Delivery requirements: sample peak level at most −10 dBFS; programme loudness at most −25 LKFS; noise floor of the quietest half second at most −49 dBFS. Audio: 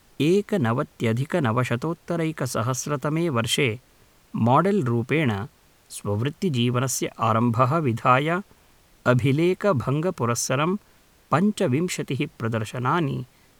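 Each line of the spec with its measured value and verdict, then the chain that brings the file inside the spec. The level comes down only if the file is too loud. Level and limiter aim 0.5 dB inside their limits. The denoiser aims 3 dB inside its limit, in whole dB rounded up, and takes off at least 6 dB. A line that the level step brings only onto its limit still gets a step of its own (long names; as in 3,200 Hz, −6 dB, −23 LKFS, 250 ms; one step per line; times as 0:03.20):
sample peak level −5.0 dBFS: out of spec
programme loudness −23.5 LKFS: out of spec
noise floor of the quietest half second −57 dBFS: in spec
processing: level −2 dB
brickwall limiter −10.5 dBFS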